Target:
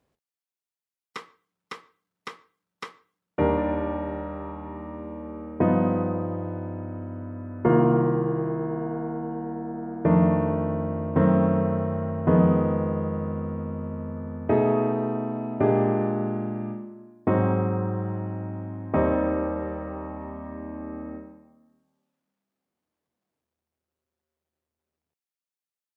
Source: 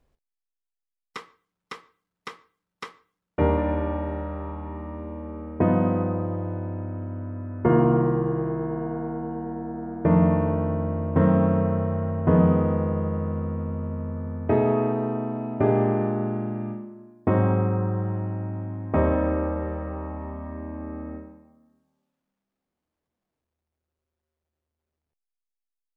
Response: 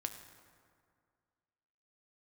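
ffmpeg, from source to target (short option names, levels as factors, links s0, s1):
-af "highpass=110"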